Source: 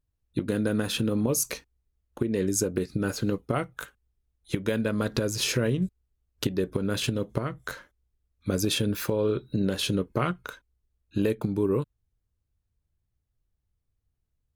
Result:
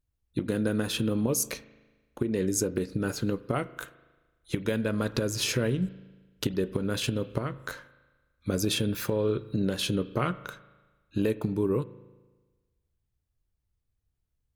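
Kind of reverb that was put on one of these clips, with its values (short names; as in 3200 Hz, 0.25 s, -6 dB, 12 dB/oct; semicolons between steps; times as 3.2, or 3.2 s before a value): spring tank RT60 1.3 s, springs 37 ms, chirp 70 ms, DRR 16 dB; gain -1.5 dB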